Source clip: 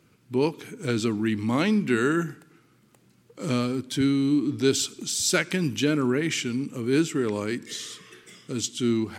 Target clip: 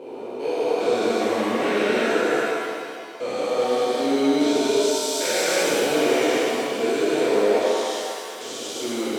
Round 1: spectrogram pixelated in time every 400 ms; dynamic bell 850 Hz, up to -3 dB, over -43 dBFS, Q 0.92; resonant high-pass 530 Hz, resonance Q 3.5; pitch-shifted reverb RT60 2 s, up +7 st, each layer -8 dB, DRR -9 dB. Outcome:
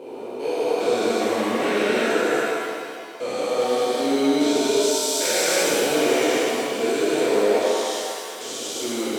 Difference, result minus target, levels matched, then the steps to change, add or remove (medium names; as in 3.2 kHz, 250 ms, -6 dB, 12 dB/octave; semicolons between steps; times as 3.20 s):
8 kHz band +3.0 dB
add after resonant high-pass: treble shelf 7.5 kHz -8.5 dB